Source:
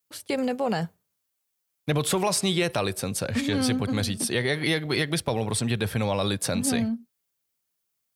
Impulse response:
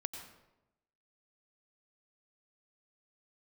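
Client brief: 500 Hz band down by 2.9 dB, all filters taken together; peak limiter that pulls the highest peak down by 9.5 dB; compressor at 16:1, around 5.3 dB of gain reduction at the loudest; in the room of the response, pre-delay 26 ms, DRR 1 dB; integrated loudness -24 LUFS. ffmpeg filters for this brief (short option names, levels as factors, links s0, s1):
-filter_complex "[0:a]equalizer=f=500:t=o:g=-3.5,acompressor=threshold=0.0501:ratio=16,alimiter=limit=0.0668:level=0:latency=1,asplit=2[s0][s1];[1:a]atrim=start_sample=2205,adelay=26[s2];[s1][s2]afir=irnorm=-1:irlink=0,volume=0.944[s3];[s0][s3]amix=inputs=2:normalize=0,volume=2.24"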